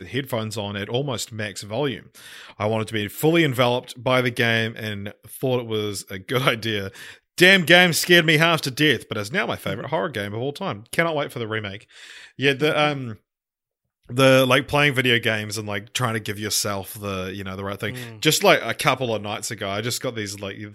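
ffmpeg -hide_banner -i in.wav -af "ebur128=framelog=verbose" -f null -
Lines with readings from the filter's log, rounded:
Integrated loudness:
  I:         -21.1 LUFS
  Threshold: -31.5 LUFS
Loudness range:
  LRA:         7.8 LU
  Threshold: -41.3 LUFS
  LRA low:   -25.1 LUFS
  LRA high:  -17.3 LUFS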